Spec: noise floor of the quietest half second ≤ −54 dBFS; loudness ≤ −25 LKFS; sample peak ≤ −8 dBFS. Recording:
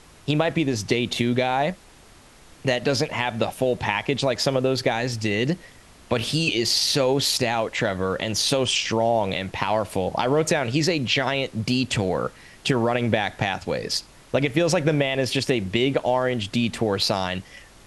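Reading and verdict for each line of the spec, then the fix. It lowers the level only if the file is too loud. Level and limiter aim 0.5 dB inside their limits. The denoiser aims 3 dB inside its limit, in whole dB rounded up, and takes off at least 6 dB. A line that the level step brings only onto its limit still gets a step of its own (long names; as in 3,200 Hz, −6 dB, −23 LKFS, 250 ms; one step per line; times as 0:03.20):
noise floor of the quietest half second −50 dBFS: out of spec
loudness −23.0 LKFS: out of spec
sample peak −4.0 dBFS: out of spec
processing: broadband denoise 6 dB, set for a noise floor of −50 dBFS
level −2.5 dB
brickwall limiter −8.5 dBFS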